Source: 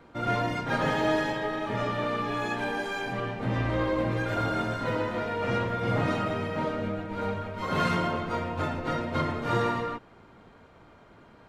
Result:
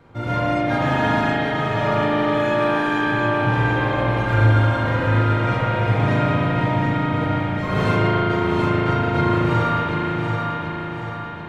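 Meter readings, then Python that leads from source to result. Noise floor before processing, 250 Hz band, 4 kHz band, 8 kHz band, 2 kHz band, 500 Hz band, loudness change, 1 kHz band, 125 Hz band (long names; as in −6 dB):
−54 dBFS, +9.5 dB, +7.0 dB, can't be measured, +9.5 dB, +7.5 dB, +9.0 dB, +8.5 dB, +13.5 dB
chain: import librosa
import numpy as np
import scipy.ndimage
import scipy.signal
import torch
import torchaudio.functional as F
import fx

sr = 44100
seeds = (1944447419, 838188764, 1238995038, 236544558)

y = fx.peak_eq(x, sr, hz=110.0, db=14.0, octaves=0.65)
y = fx.echo_feedback(y, sr, ms=735, feedback_pct=50, wet_db=-5)
y = fx.rev_spring(y, sr, rt60_s=3.8, pass_ms=(37,), chirp_ms=50, drr_db=-6.5)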